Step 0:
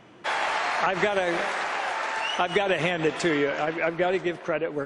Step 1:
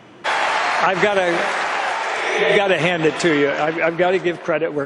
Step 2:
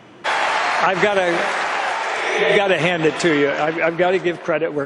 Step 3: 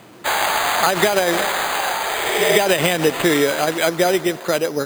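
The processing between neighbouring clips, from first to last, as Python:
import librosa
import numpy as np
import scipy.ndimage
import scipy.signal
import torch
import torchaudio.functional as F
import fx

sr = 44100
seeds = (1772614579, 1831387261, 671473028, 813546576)

y1 = scipy.signal.sosfilt(scipy.signal.butter(2, 65.0, 'highpass', fs=sr, output='sos'), x)
y1 = fx.spec_repair(y1, sr, seeds[0], start_s=1.99, length_s=0.55, low_hz=220.0, high_hz=4500.0, source='both')
y1 = y1 * 10.0 ** (7.5 / 20.0)
y2 = y1
y3 = np.repeat(y2[::8], 8)[:len(y2)]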